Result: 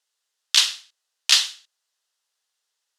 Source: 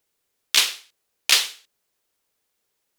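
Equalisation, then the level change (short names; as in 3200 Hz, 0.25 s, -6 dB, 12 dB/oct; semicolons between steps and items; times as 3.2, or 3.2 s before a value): BPF 630–5900 Hz; tilt +3 dB/oct; bell 2300 Hz -9 dB 0.22 oct; -3.0 dB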